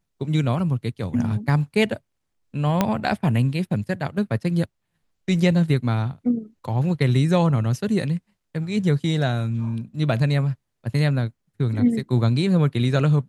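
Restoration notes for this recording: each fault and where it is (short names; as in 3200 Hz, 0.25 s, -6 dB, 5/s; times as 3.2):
2.81 pop -5 dBFS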